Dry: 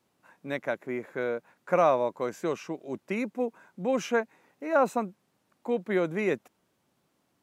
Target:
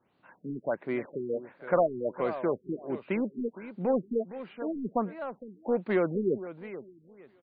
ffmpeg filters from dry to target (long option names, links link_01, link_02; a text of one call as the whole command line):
ffmpeg -i in.wav -filter_complex "[0:a]acrossover=split=3500[link_01][link_02];[link_02]acompressor=threshold=-56dB:ratio=4:attack=1:release=60[link_03];[link_01][link_03]amix=inputs=2:normalize=0,asplit=2[link_04][link_05];[link_05]asoftclip=type=hard:threshold=-27dB,volume=-5dB[link_06];[link_04][link_06]amix=inputs=2:normalize=0,aecho=1:1:462|924|1386:0.2|0.0479|0.0115,afftfilt=real='re*lt(b*sr/1024,410*pow(4900/410,0.5+0.5*sin(2*PI*1.4*pts/sr)))':imag='im*lt(b*sr/1024,410*pow(4900/410,0.5+0.5*sin(2*PI*1.4*pts/sr)))':win_size=1024:overlap=0.75,volume=-2dB" out.wav